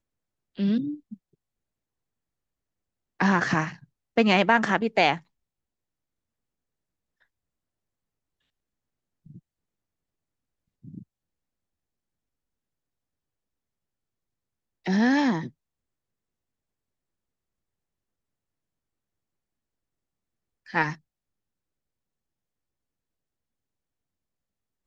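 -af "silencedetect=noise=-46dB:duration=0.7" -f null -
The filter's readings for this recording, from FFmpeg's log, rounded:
silence_start: 1.15
silence_end: 3.20 | silence_duration: 2.06
silence_start: 5.20
silence_end: 9.26 | silence_duration: 4.07
silence_start: 9.39
silence_end: 10.84 | silence_duration: 1.46
silence_start: 11.03
silence_end: 14.85 | silence_duration: 3.83
silence_start: 15.50
silence_end: 20.66 | silence_duration: 5.17
silence_start: 20.96
silence_end: 24.87 | silence_duration: 3.91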